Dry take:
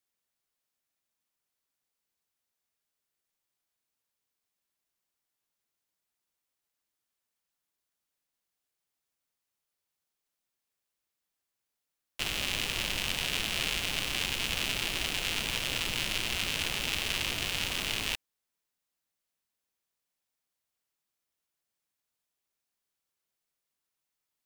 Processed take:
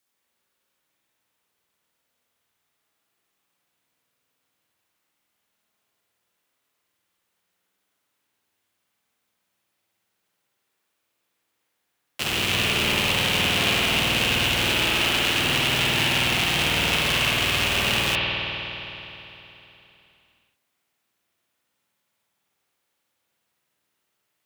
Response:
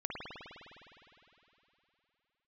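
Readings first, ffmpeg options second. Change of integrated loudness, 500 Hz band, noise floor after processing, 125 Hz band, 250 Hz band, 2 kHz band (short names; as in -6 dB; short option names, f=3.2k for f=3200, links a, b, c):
+10.0 dB, +14.0 dB, -77 dBFS, +13.5 dB, +13.5 dB, +11.0 dB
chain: -filter_complex "[0:a]highpass=79,asplit=2[a][b];[b]aeval=exprs='(mod(26.6*val(0)+1,2)-1)/26.6':c=same,volume=-7dB[c];[a][c]amix=inputs=2:normalize=0[d];[1:a]atrim=start_sample=2205[e];[d][e]afir=irnorm=-1:irlink=0,volume=7.5dB"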